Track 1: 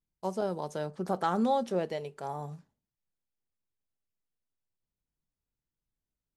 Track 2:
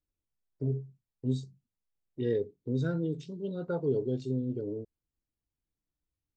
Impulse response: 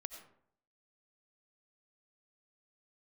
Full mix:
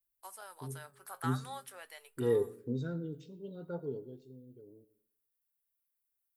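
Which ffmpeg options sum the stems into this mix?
-filter_complex "[0:a]aexciter=amount=6.6:drive=8.1:freq=8700,highpass=frequency=1400:width_type=q:width=1.7,volume=-3.5dB[link_01];[1:a]afade=type=in:start_time=0.79:duration=0.7:silence=0.298538,afade=type=out:start_time=2.52:duration=0.4:silence=0.421697,afade=type=out:start_time=3.81:duration=0.39:silence=0.251189,asplit=2[link_02][link_03];[link_03]volume=-3.5dB[link_04];[2:a]atrim=start_sample=2205[link_05];[link_04][link_05]afir=irnorm=-1:irlink=0[link_06];[link_01][link_02][link_06]amix=inputs=3:normalize=0,flanger=delay=2:depth=5.4:regen=78:speed=0.45:shape=sinusoidal"

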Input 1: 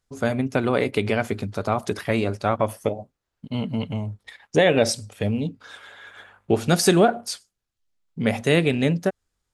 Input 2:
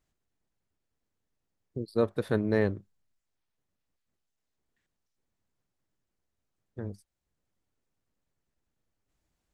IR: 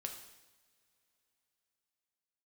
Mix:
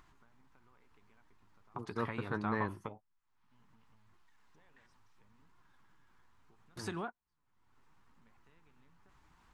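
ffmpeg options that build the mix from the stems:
-filter_complex "[0:a]acompressor=threshold=-30dB:ratio=3,volume=-3dB[link_01];[1:a]flanger=delay=2.8:depth=5.4:regen=67:speed=0.72:shape=sinusoidal,volume=3dB,asplit=2[link_02][link_03];[link_03]apad=whole_len=420338[link_04];[link_01][link_04]sidechaingate=range=-50dB:threshold=-59dB:ratio=16:detection=peak[link_05];[link_05][link_02]amix=inputs=2:normalize=0,lowpass=frequency=1200:poles=1,lowshelf=frequency=770:width_type=q:width=3:gain=-7.5,acompressor=mode=upward:threshold=-46dB:ratio=2.5"

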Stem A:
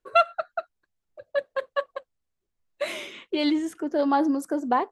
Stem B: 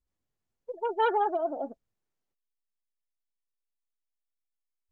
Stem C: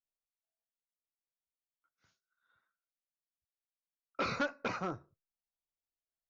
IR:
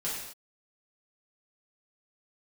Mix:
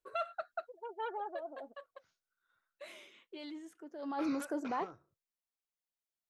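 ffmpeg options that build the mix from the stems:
-filter_complex "[0:a]alimiter=limit=-19dB:level=0:latency=1:release=15,volume=4dB,afade=type=out:start_time=0.84:duration=0.62:silence=0.281838,afade=type=in:start_time=3.98:duration=0.28:silence=0.266073[link_01];[1:a]volume=-13.5dB[link_02];[2:a]acompressor=threshold=-44dB:ratio=3,volume=-2.5dB[link_03];[link_01][link_02][link_03]amix=inputs=3:normalize=0,lowshelf=frequency=230:gain=-7"

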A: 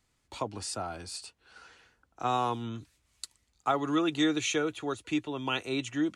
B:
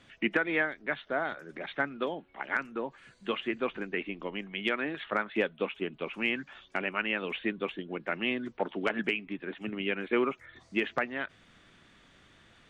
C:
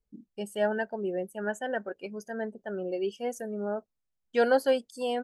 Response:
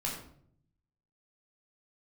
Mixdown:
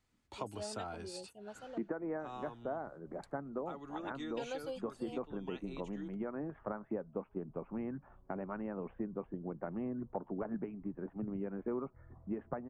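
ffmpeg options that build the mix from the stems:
-filter_complex "[0:a]highshelf=frequency=4400:gain=-7,volume=-4.5dB,afade=type=out:start_time=1.55:duration=0.5:silence=0.251189[link_01];[1:a]lowpass=frequency=1000:width=0.5412,lowpass=frequency=1000:width=1.3066,asubboost=boost=3.5:cutoff=160,adelay=1550,volume=-1dB[link_02];[2:a]afwtdn=0.0224,highshelf=frequency=5500:gain=-11.5,aexciter=amount=15.6:drive=5.6:freq=2800,volume=-16dB,asplit=3[link_03][link_04][link_05];[link_03]atrim=end=1.83,asetpts=PTS-STARTPTS,afade=type=out:start_time=1.826:duration=0.004:curve=hsin[link_06];[link_04]atrim=start=1.83:end=4.37,asetpts=PTS-STARTPTS,volume=0[link_07];[link_05]atrim=start=4.37,asetpts=PTS-STARTPTS,afade=type=in:duration=0.004:curve=hsin[link_08];[link_06][link_07][link_08]concat=n=3:v=0:a=1[link_09];[link_01][link_02][link_09]amix=inputs=3:normalize=0,acompressor=threshold=-37dB:ratio=2.5"

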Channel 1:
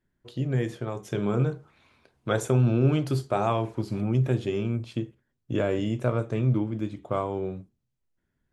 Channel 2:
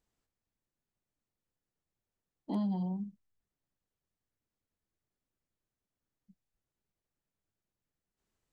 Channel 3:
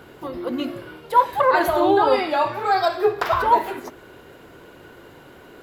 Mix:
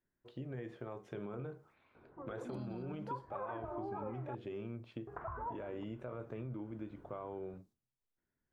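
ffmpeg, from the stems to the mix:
ffmpeg -i stem1.wav -i stem2.wav -i stem3.wav -filter_complex "[0:a]volume=-7dB,asplit=2[link_01][link_02];[1:a]aexciter=amount=9.5:drive=6.7:freq=3900,volume=0.5dB[link_03];[2:a]asubboost=boost=4:cutoff=210,lowpass=frequency=1500:width=0.5412,lowpass=frequency=1500:width=1.3066,adelay=1950,volume=-17dB,asplit=3[link_04][link_05][link_06];[link_04]atrim=end=4.35,asetpts=PTS-STARTPTS,afade=type=out:start_time=4.346:duration=0.004:curve=hsin[link_07];[link_05]atrim=start=4.35:end=5.07,asetpts=PTS-STARTPTS,volume=0[link_08];[link_06]atrim=start=5.07,asetpts=PTS-STARTPTS,afade=type=in:duration=0.004:curve=hsin[link_09];[link_07][link_08][link_09]concat=n=3:v=0:a=1[link_10];[link_02]apad=whole_len=375949[link_11];[link_03][link_11]sidechaingate=range=-33dB:threshold=-59dB:ratio=16:detection=peak[link_12];[link_01][link_12]amix=inputs=2:normalize=0,bass=frequency=250:gain=-7,treble=frequency=4000:gain=-14,alimiter=level_in=5.5dB:limit=-24dB:level=0:latency=1:release=29,volume=-5.5dB,volume=0dB[link_13];[link_10][link_13]amix=inputs=2:normalize=0,highshelf=frequency=4400:gain=-8.5,acompressor=threshold=-41dB:ratio=3" out.wav

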